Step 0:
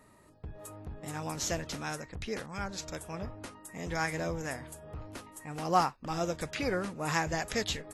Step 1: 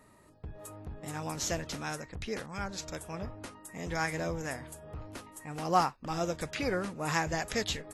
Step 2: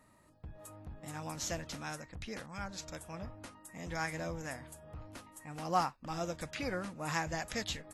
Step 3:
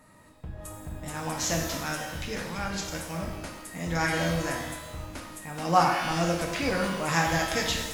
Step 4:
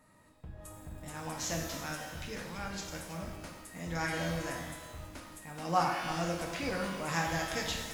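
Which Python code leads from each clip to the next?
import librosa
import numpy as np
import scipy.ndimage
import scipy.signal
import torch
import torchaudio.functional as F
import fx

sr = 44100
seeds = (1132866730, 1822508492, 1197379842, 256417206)

y1 = x
y2 = fx.peak_eq(y1, sr, hz=410.0, db=-9.5, octaves=0.24)
y2 = F.gain(torch.from_numpy(y2), -4.5).numpy()
y3 = fx.rev_shimmer(y2, sr, seeds[0], rt60_s=1.1, semitones=12, shimmer_db=-8, drr_db=0.5)
y3 = F.gain(torch.from_numpy(y3), 7.5).numpy()
y4 = fx.echo_crushed(y3, sr, ms=327, feedback_pct=35, bits=7, wet_db=-13.5)
y4 = F.gain(torch.from_numpy(y4), -7.5).numpy()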